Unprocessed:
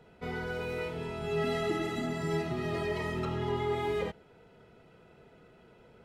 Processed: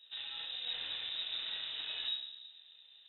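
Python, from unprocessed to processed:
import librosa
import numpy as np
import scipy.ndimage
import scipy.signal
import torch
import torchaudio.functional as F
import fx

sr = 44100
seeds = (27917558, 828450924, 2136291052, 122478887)

y = fx.lower_of_two(x, sr, delay_ms=0.96)
y = fx.tilt_shelf(y, sr, db=5.5, hz=1200.0)
y = fx.comb_fb(y, sr, f0_hz=65.0, decay_s=0.96, harmonics='all', damping=0.0, mix_pct=70)
y = np.clip(y, -10.0 ** (-35.5 / 20.0), 10.0 ** (-35.5 / 20.0))
y = fx.stretch_grains(y, sr, factor=0.51, grain_ms=68.0)
y = 10.0 ** (-40.0 / 20.0) * (np.abs((y / 10.0 ** (-40.0 / 20.0) + 3.0) % 4.0 - 2.0) - 1.0)
y = fx.echo_feedback(y, sr, ms=113, feedback_pct=41, wet_db=-14.0)
y = fx.room_shoebox(y, sr, seeds[0], volume_m3=270.0, walls='mixed', distance_m=0.87)
y = fx.freq_invert(y, sr, carrier_hz=3800)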